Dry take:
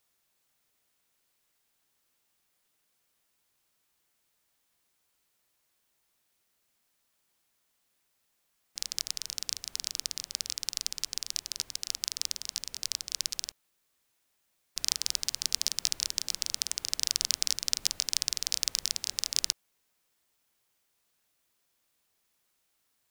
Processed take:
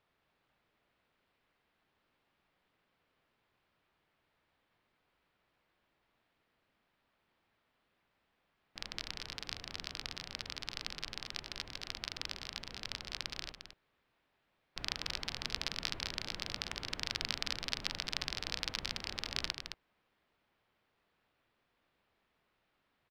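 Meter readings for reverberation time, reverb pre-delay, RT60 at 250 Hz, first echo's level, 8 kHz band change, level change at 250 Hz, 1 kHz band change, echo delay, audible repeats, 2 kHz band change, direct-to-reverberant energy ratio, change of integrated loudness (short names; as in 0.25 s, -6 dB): none, none, none, -8.0 dB, -18.5 dB, +7.0 dB, +5.0 dB, 0.216 s, 1, +2.5 dB, none, -9.0 dB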